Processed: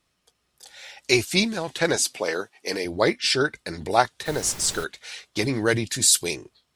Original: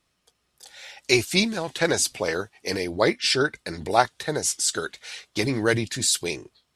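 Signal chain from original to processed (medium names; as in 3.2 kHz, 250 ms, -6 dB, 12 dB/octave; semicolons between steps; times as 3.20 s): 1.96–2.85 s: high-pass 230 Hz 12 dB/octave; 4.25–4.83 s: added noise pink -38 dBFS; 5.89–6.35 s: treble shelf 7.3 kHz +10 dB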